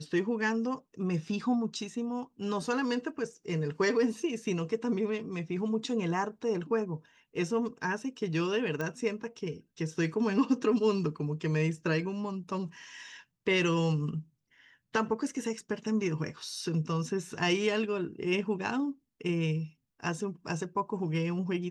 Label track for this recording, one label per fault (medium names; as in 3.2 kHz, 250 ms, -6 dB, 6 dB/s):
8.810000	8.810000	pop -21 dBFS